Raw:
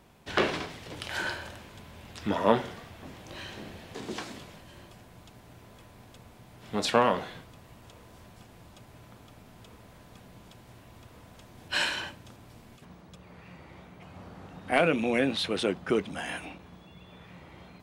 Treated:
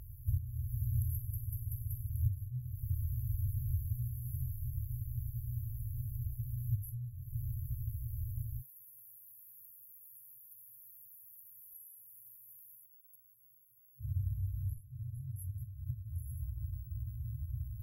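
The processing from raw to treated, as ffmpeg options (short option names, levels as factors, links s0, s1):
-filter_complex "[0:a]asplit=3[s0][s1][s2];[s0]afade=t=out:st=8.6:d=0.02[s3];[s1]highpass=f=410:w=0.5412,highpass=f=410:w=1.3066,afade=t=in:st=8.6:d=0.02,afade=t=out:st=14:d=0.02[s4];[s2]afade=t=in:st=14:d=0.02[s5];[s3][s4][s5]amix=inputs=3:normalize=0,asplit=6[s6][s7][s8][s9][s10][s11];[s6]atrim=end=1.332[s12];[s7]atrim=start=1.138:end=1.332[s13];[s8]atrim=start=1.138:end=1.332[s14];[s9]atrim=start=1.138:end=1.332[s15];[s10]atrim=start=1.138:end=1.332[s16];[s11]atrim=start=2.088[s17];[s12][s13]acrossfade=d=0.004:c1=hsin:c2=hsin[s18];[s18][s14]acrossfade=d=0.004:c1=hsin:c2=hsin[s19];[s19][s15]acrossfade=d=0.004:c1=hsin:c2=hsin[s20];[s20][s16]acrossfade=d=0.004:c1=hsin:c2=hsin[s21];[s21][s17]acrossfade=d=0.004:c1=hsin:c2=hsin,acompressor=threshold=0.0178:ratio=6,afftfilt=real='re*(1-between(b*sr/4096,130,11000))':imag='im*(1-between(b*sr/4096,130,11000))':win_size=4096:overlap=0.75,volume=7.08"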